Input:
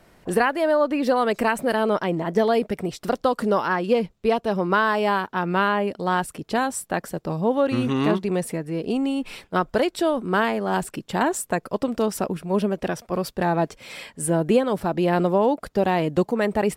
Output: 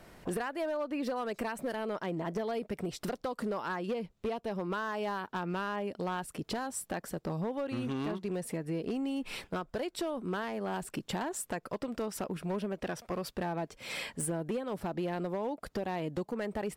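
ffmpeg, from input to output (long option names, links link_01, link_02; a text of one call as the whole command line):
ffmpeg -i in.wav -filter_complex "[0:a]asettb=1/sr,asplit=3[link_01][link_02][link_03];[link_01]atrim=end=11.334[link_04];[link_02]atrim=start=11.33:end=13.39,asetpts=PTS-STARTPTS,afade=type=in:duration=0.004:curve=qsin,afade=type=out:start_time=2.056:duration=0.004:curve=qsin,equalizer=frequency=1900:width=0.42:gain=3[link_05];[link_03]atrim=start=13.386[link_06];[link_04][link_05]acrossfade=duration=0.004:curve1=hsin:curve2=qsin[link_07];[link_07][link_06]acrossfade=duration=0.004:curve1=qsin:curve2=hsin,acompressor=threshold=-32dB:ratio=6,asoftclip=type=hard:threshold=-28dB" out.wav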